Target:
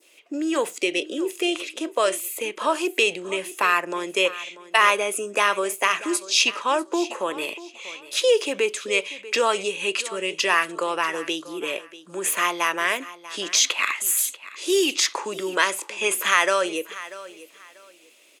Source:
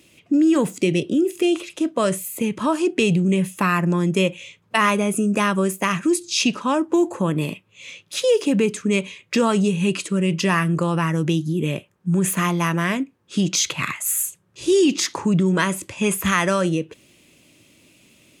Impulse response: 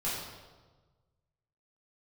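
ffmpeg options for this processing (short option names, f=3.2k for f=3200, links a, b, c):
-filter_complex "[0:a]highpass=f=410:w=0.5412,highpass=f=410:w=1.3066,adynamicequalizer=threshold=0.0141:dfrequency=2900:dqfactor=0.88:tfrequency=2900:tqfactor=0.88:attack=5:release=100:ratio=0.375:range=2:mode=boostabove:tftype=bell,asplit=2[a][b];[b]aecho=0:1:640|1280:0.141|0.0339[c];[a][c]amix=inputs=2:normalize=0"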